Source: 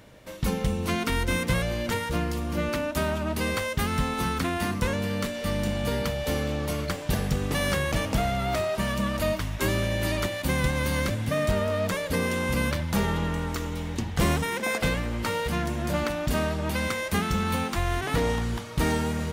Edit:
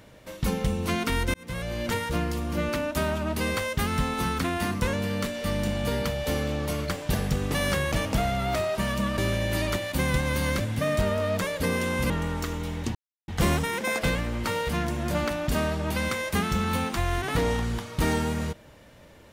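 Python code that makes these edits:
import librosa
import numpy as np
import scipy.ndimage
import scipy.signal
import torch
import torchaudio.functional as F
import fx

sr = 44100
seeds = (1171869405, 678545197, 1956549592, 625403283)

y = fx.edit(x, sr, fx.fade_in_span(start_s=1.34, length_s=0.53),
    fx.cut(start_s=9.18, length_s=0.5),
    fx.cut(start_s=12.6, length_s=0.62),
    fx.insert_silence(at_s=14.07, length_s=0.33), tone=tone)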